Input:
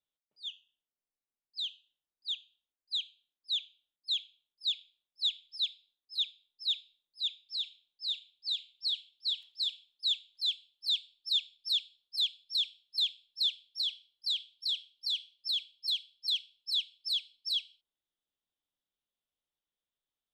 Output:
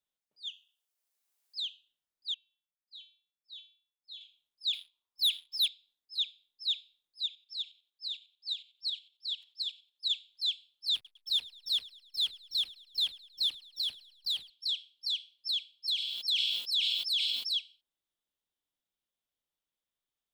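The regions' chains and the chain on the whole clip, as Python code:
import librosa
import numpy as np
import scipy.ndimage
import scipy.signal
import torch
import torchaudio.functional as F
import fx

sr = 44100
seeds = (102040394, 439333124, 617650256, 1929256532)

y = fx.chain(x, sr, fx.highpass(hz=490.0, slope=12),
    fx.high_shelf(hz=4500.0, db=8.0),
    fx.band_squash(depth_pct=40), at=(0.47, 1.61))
y = fx.chain(y, sr, fx.lowpass(hz=5100.0, slope=12),
    fx.comb_fb(f0_hz=180.0, decay_s=0.4, harmonics='odd', damping=0.0, mix_pct=90), at=(2.34, 4.21))
y = fx.chain(y, sr, fx.peak_eq(hz=1000.0, db=13.5, octaves=0.6),
    fx.leveller(passes=2), at=(4.73, 5.68))
y = fx.chain(y, sr, fx.highpass(hz=350.0, slope=12),
    fx.tremolo_shape(shape='saw_up', hz=11.0, depth_pct=60), at=(7.26, 10.1))
y = fx.chain(y, sr, fx.backlash(play_db=-39.0),
    fx.echo_thinned(ms=106, feedback_pct=51, hz=720.0, wet_db=-20), at=(10.94, 14.5))
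y = fx.chain(y, sr, fx.highpass(hz=130.0, slope=12),
    fx.high_shelf(hz=11000.0, db=8.0),
    fx.sustainer(db_per_s=24.0), at=(15.95, 17.47))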